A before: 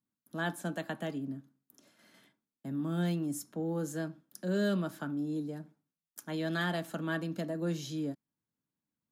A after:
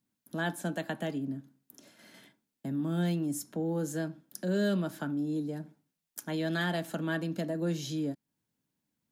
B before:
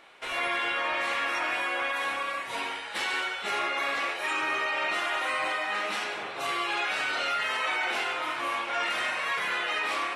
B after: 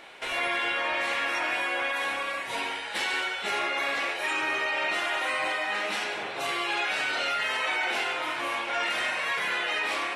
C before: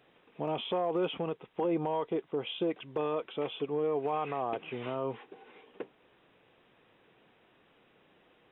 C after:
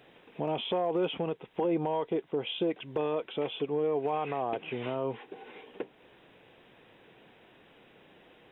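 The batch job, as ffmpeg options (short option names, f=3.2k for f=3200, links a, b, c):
-filter_complex "[0:a]equalizer=f=1.2k:t=o:w=0.32:g=-5.5,asplit=2[a][b];[b]acompressor=threshold=-45dB:ratio=6,volume=2dB[c];[a][c]amix=inputs=2:normalize=0"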